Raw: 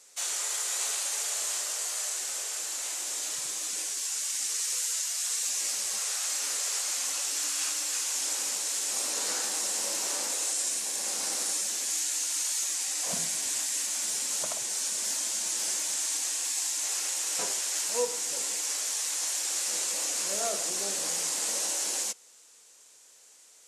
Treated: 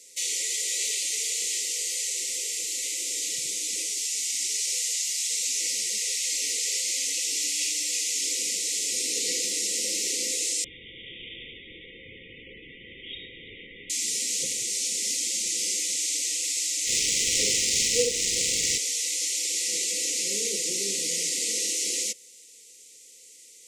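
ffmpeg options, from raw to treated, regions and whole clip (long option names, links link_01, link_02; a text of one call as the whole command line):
ffmpeg -i in.wav -filter_complex "[0:a]asettb=1/sr,asplit=3[link_01][link_02][link_03];[link_01]atrim=end=10.644[link_04];[link_02]atrim=start=10.64:end=13.9,asetpts=PTS-STARTPTS,afade=type=in:duration=0.004:curve=qsin,afade=type=out:start_time=3.256:duration=0.004:curve=qsin,lowpass=frequency=3300:width_type=q:width=0.5098,lowpass=frequency=3300:width_type=q:width=0.6013,lowpass=frequency=3300:width_type=q:width=0.9,lowpass=frequency=3300:width_type=q:width=2.563,afreqshift=-3900,aemphasis=mode=reproduction:type=75kf[link_05];[link_03]atrim=start=13.896[link_06];[link_04][link_05]acrossfade=duration=0.004:curve1=hsin:curve2=qsin[link_07];[link_07][link_06]acrossfade=duration=0.004:curve1=qsin:curve2=hsin,asettb=1/sr,asplit=3[link_08][link_09][link_10];[link_08]atrim=end=16.874[link_11];[link_09]atrim=start=16.87:end=18.78,asetpts=PTS-STARTPTS,afade=type=in:duration=0.004:curve=qsin,afade=type=out:start_time=1.906:duration=0.004:curve=qsin,aemphasis=mode=production:type=50fm,adynamicsmooth=sensitivity=3.5:basefreq=1900,asplit=2[link_12][link_13];[link_13]adelay=44,volume=-3.5dB[link_14];[link_12][link_14]amix=inputs=2:normalize=0,atrim=end_sample=84231[link_15];[link_10]atrim=start=18.776[link_16];[link_11][link_15]acrossfade=duration=0.004:curve1=hsin:curve2=qsin[link_17];[link_17][link_16]acrossfade=duration=0.004:curve1=qsin:curve2=hsin,acrossover=split=7000[link_18][link_19];[link_19]acompressor=threshold=-39dB:ratio=4:attack=1:release=60[link_20];[link_18][link_20]amix=inputs=2:normalize=0,afftfilt=real='re*(1-between(b*sr/4096,540,1900))':imag='im*(1-between(b*sr/4096,540,1900))':win_size=4096:overlap=0.75,acontrast=39" out.wav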